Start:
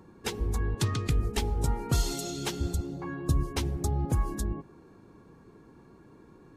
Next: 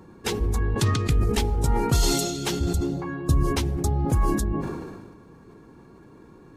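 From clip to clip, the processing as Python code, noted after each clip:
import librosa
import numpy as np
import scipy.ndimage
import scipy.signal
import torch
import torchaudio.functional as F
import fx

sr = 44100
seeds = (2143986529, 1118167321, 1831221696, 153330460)

y = fx.sustainer(x, sr, db_per_s=37.0)
y = F.gain(torch.from_numpy(y), 4.5).numpy()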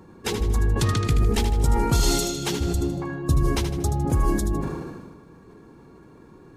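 y = fx.echo_feedback(x, sr, ms=78, feedback_pct=42, wet_db=-8.5)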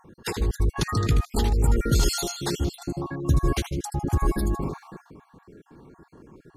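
y = fx.spec_dropout(x, sr, seeds[0], share_pct=44)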